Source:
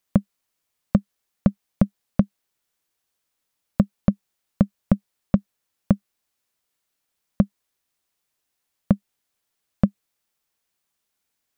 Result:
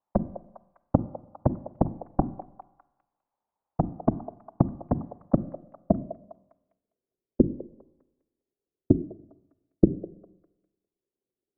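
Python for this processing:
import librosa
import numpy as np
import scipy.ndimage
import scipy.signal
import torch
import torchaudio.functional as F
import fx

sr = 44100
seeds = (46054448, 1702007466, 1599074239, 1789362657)

p1 = fx.hum_notches(x, sr, base_hz=50, count=4)
p2 = fx.whisperise(p1, sr, seeds[0])
p3 = fx.rev_schroeder(p2, sr, rt60_s=1.0, comb_ms=32, drr_db=17.5)
p4 = fx.filter_sweep_lowpass(p3, sr, from_hz=860.0, to_hz=390.0, start_s=5.31, end_s=7.17, q=4.7)
p5 = p4 + fx.echo_stepped(p4, sr, ms=202, hz=630.0, octaves=0.7, feedback_pct=70, wet_db=-11.0, dry=0)
y = p5 * 10.0 ** (-4.5 / 20.0)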